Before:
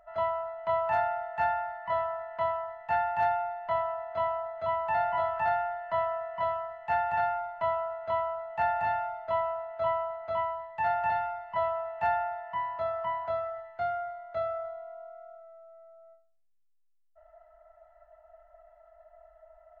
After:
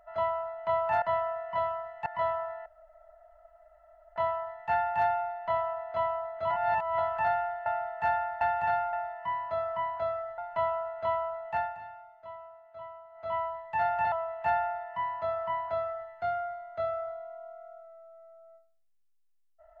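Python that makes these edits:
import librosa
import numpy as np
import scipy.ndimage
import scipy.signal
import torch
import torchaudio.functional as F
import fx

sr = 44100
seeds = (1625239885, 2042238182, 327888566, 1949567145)

y = fx.edit(x, sr, fx.swap(start_s=1.02, length_s=0.75, other_s=5.87, other_length_s=1.04),
    fx.insert_room_tone(at_s=2.37, length_s=1.5),
    fx.reverse_span(start_s=4.71, length_s=0.48),
    fx.fade_down_up(start_s=8.53, length_s=1.93, db=-15.5, fade_s=0.31),
    fx.cut(start_s=11.17, length_s=0.52),
    fx.duplicate(start_s=12.21, length_s=1.45, to_s=7.43), tone=tone)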